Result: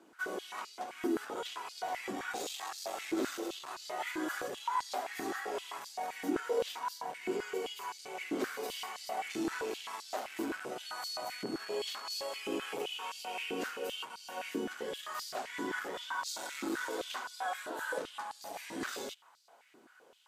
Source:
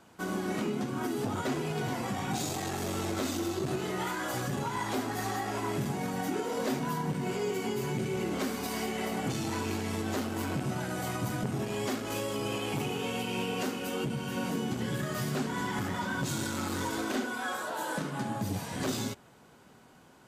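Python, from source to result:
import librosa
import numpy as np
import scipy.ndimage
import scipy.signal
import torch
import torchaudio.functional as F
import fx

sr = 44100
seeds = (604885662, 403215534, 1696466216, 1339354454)

y = fx.dmg_tone(x, sr, hz=4400.0, level_db=-42.0, at=(10.85, 12.39), fade=0.02)
y = fx.filter_held_highpass(y, sr, hz=7.7, low_hz=320.0, high_hz=4600.0)
y = y * librosa.db_to_amplitude(-7.0)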